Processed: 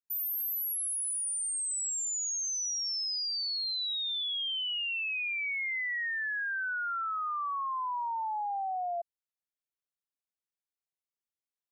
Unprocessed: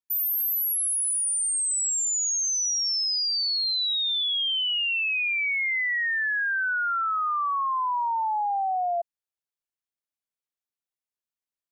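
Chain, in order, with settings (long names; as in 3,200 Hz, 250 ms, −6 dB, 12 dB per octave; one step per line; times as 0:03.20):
0:05.42–0:06.09: parametric band 1,000 Hz +6 dB 0.36 octaves
level −7.5 dB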